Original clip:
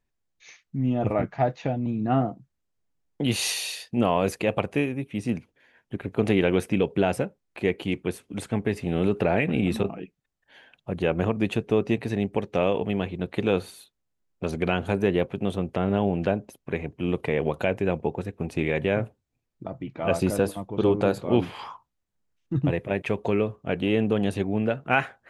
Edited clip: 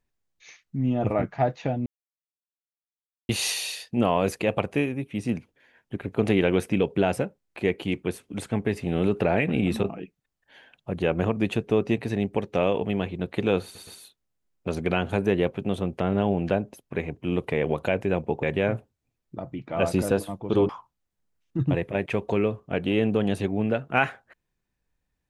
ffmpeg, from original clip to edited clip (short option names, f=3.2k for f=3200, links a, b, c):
-filter_complex "[0:a]asplit=7[a][b][c][d][e][f][g];[a]atrim=end=1.86,asetpts=PTS-STARTPTS,afade=t=out:st=1.856:d=0.004:c=hsin[h];[b]atrim=start=1.86:end=3.29,asetpts=PTS-STARTPTS,volume=0[i];[c]atrim=start=3.29:end=13.752,asetpts=PTS-STARTPTS,afade=t=in:d=0.004:c=hsin[j];[d]atrim=start=13.628:end=13.752[k];[e]atrim=start=13.628:end=18.192[l];[f]atrim=start=18.708:end=20.972[m];[g]atrim=start=21.648[n];[h][i][j]concat=n=3:v=0:a=1[o];[o][k]acrossfade=d=0.004:c1=hsin:c2=hsin[p];[p][l]acrossfade=d=0.004:c1=hsin:c2=hsin[q];[q][m]acrossfade=d=0.004:c1=hsin:c2=hsin[r];[r][n]acrossfade=d=0.004:c1=hsin:c2=hsin"